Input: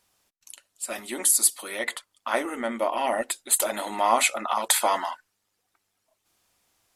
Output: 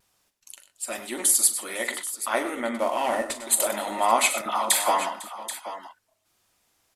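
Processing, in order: 2.75–3.5 CVSD 64 kbps; 4.41–5.09 dispersion lows, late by 50 ms, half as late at 1300 Hz; on a send: tapped delay 42/99/121/501/779 ms -12.5/-12.5/-16.5/-20/-12.5 dB; on the sum: vibrato 0.51 Hz 17 cents

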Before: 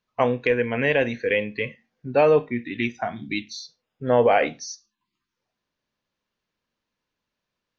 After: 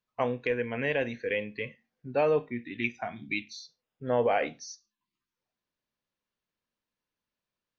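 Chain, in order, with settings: 2.84–3.59 bell 2400 Hz +10 dB 0.27 oct; gain -8 dB

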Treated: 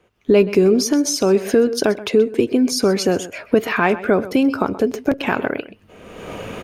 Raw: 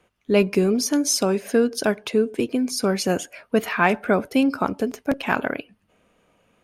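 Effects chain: recorder AGC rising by 36 dB/s; fifteen-band EQ 100 Hz +5 dB, 400 Hz +6 dB, 10000 Hz -6 dB; outdoor echo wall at 22 m, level -16 dB

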